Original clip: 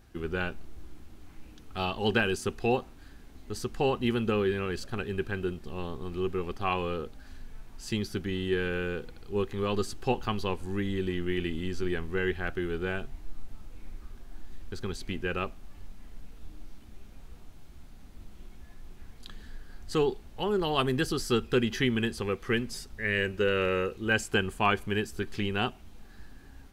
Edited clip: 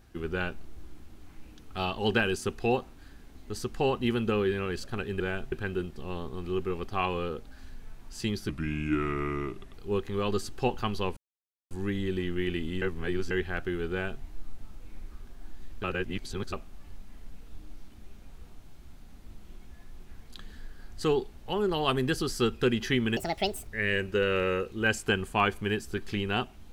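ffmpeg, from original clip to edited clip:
-filter_complex "[0:a]asplit=12[a][b][c][d][e][f][g][h][i][j][k][l];[a]atrim=end=5.202[m];[b]atrim=start=12.808:end=13.132[n];[c]atrim=start=5.198:end=8.174[o];[d]atrim=start=8.17:end=9.18,asetpts=PTS-STARTPTS,asetrate=35721,aresample=44100[p];[e]atrim=start=9.176:end=10.61,asetpts=PTS-STARTPTS,afade=t=out:st=1.43:d=0.004:c=hsin,apad=pad_dur=0.54[q];[f]atrim=start=10.61:end=11.722,asetpts=PTS-STARTPTS,afade=t=in:d=0.004:c=hsin[r];[g]atrim=start=11.718:end=12.212,asetpts=PTS-STARTPTS,areverse[s];[h]atrim=start=12.208:end=14.742[t];[i]atrim=start=14.738:end=15.432,asetpts=PTS-STARTPTS,areverse[u];[j]atrim=start=15.428:end=22.074[v];[k]atrim=start=22.07:end=22.93,asetpts=PTS-STARTPTS,asetrate=74529,aresample=44100,atrim=end_sample=22441,asetpts=PTS-STARTPTS[w];[l]atrim=start=22.926[x];[m][n]acrossfade=d=0.004:c1=hsin:c2=hsin[y];[y][o]acrossfade=d=0.004:c1=hsin:c2=hsin[z];[z][p]acrossfade=d=0.004:c1=hsin:c2=hsin[aa];[q][r]concat=n=2:v=0:a=1[ab];[aa][ab]acrossfade=d=0.004:c1=hsin:c2=hsin[ac];[ac][s]acrossfade=d=0.004:c1=hsin:c2=hsin[ad];[ad][t]acrossfade=d=0.004:c1=hsin:c2=hsin[ae];[ae][u]acrossfade=d=0.004:c1=hsin:c2=hsin[af];[af][v]acrossfade=d=0.004:c1=hsin:c2=hsin[ag];[ag][w]acrossfade=d=0.004:c1=hsin:c2=hsin[ah];[ah][x]acrossfade=d=0.004:c1=hsin:c2=hsin"

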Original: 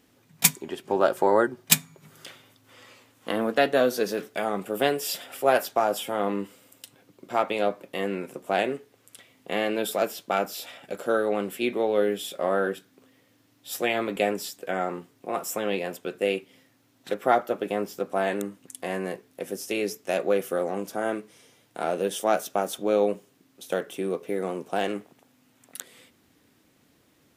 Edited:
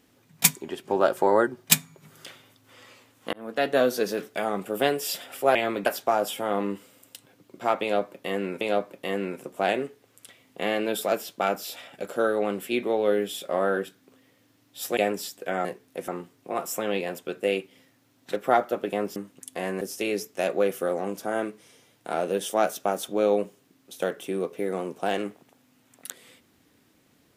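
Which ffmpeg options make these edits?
-filter_complex "[0:a]asplit=10[a][b][c][d][e][f][g][h][i][j];[a]atrim=end=3.33,asetpts=PTS-STARTPTS,afade=t=out:st=3.326:d=0.004:c=hsin[k];[b]atrim=start=3.33:end=5.552,asetpts=PTS-STARTPTS,afade=t=in:d=0.44[l];[c]atrim=start=13.868:end=14.182[m];[d]atrim=start=5.548:end=8.302[n];[e]atrim=start=7.508:end=13.872[o];[f]atrim=start=14.178:end=14.862[p];[g]atrim=start=19.078:end=19.512[q];[h]atrim=start=14.858:end=17.942[r];[i]atrim=start=18.428:end=19.082[s];[j]atrim=start=19.508[t];[k][l]concat=n=2:v=0:a=1[u];[u][m]acrossfade=d=0.004:c1=hsin:c2=hsin[v];[v][n]acrossfade=d=0.004:c1=hsin:c2=hsin[w];[w][o]acrossfade=d=0.004:c1=hsin:c2=hsin[x];[x][p]acrossfade=d=0.004:c1=hsin:c2=hsin[y];[y][q]acrossfade=d=0.004:c1=hsin:c2=hsin[z];[z][r]acrossfade=d=0.004:c1=hsin:c2=hsin[aa];[aa][s]acrossfade=d=0.004:c1=hsin:c2=hsin[ab];[ab][t]acrossfade=d=0.004:c1=hsin:c2=hsin"

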